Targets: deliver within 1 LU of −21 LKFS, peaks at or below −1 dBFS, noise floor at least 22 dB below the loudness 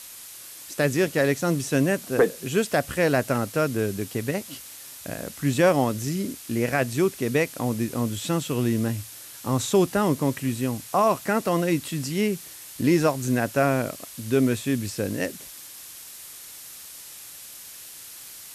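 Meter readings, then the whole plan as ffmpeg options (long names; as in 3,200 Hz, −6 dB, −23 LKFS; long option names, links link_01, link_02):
background noise floor −43 dBFS; target noise floor −47 dBFS; integrated loudness −24.5 LKFS; sample peak −10.0 dBFS; target loudness −21.0 LKFS
→ -af "afftdn=noise_reduction=6:noise_floor=-43"
-af "volume=3.5dB"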